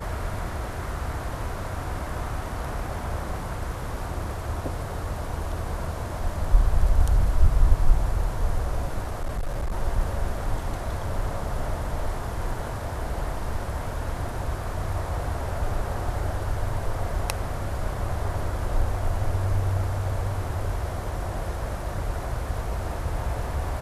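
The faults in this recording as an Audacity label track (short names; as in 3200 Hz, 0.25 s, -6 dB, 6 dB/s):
9.030000	9.720000	clipped -23.5 dBFS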